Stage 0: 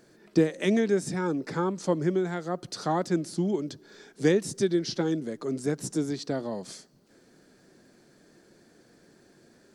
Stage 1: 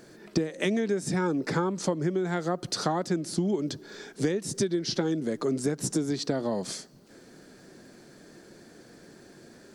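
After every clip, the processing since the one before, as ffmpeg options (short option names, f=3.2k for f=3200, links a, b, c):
-af "acompressor=threshold=-30dB:ratio=16,volume=7dB"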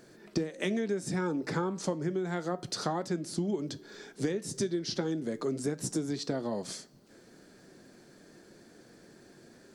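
-af "flanger=delay=7.5:depth=3.8:regen=-82:speed=0.31:shape=triangular"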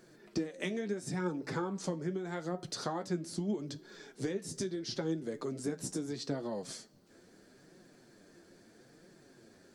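-af "flanger=delay=5.2:depth=7:regen=44:speed=0.77:shape=triangular"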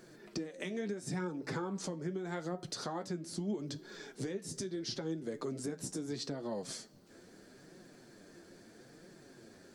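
-af "alimiter=level_in=7.5dB:limit=-24dB:level=0:latency=1:release=377,volume=-7.5dB,volume=3dB"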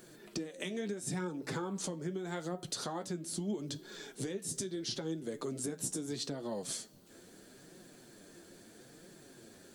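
-af "aexciter=amount=2:drive=2.4:freq=2.8k"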